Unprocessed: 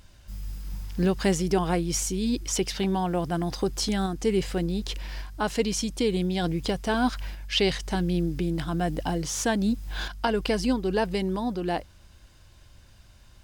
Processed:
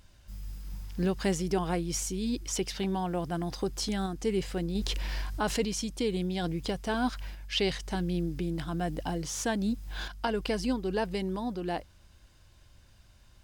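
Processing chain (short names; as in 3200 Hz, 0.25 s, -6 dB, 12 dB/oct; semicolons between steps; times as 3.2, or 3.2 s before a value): 4.75–5.65 fast leveller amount 50%; gain -5 dB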